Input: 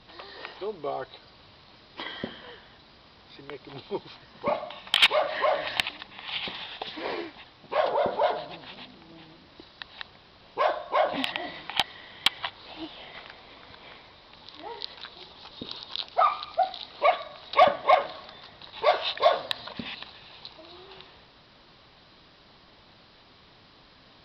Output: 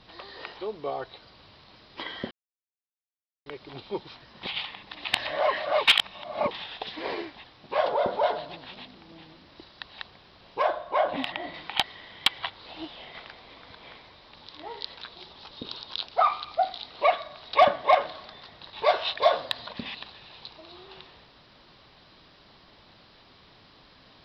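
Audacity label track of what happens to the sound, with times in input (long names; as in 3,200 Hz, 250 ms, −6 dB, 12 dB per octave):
2.310000	3.460000	silence
4.430000	6.510000	reverse
10.620000	11.540000	low-pass filter 2,600 Hz 6 dB per octave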